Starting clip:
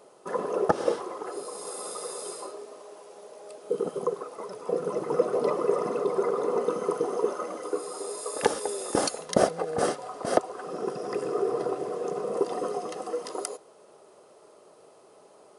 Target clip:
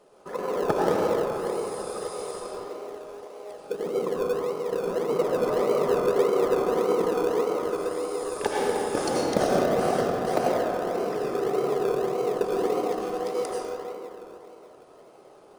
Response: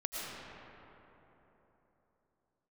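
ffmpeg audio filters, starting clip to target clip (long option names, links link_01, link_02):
-filter_complex "[0:a]highshelf=frequency=9600:gain=-9[link_01];[1:a]atrim=start_sample=2205,asetrate=52920,aresample=44100[link_02];[link_01][link_02]afir=irnorm=-1:irlink=0,asplit=2[link_03][link_04];[link_04]acrusher=samples=35:mix=1:aa=0.000001:lfo=1:lforange=21:lforate=1.7,volume=-12dB[link_05];[link_03][link_05]amix=inputs=2:normalize=0"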